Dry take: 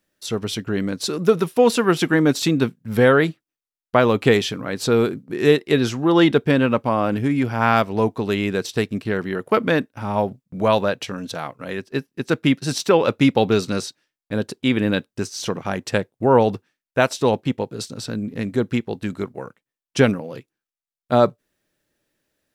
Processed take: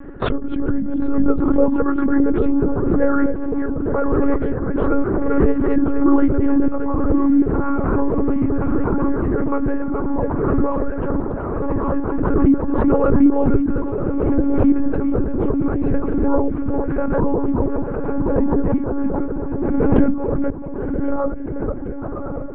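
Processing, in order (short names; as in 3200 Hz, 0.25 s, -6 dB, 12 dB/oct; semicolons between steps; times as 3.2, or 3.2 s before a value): reverse delay 0.244 s, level -6 dB; diffused feedback echo 1.092 s, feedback 61%, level -7 dB; in parallel at +2.5 dB: limiter -11.5 dBFS, peak gain reduction 9.5 dB; on the sum: LPF 1100 Hz 24 dB/oct; bell 730 Hz -14 dB 0.7 oct; notches 60/120/180/240/300/360/420/480/540/600 Hz; on a send at -9.5 dB: reverb RT60 0.65 s, pre-delay 4 ms; on the sum: reverb removal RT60 0.63 s; monotone LPC vocoder at 8 kHz 280 Hz; backwards sustainer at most 24 dB/s; gain -2 dB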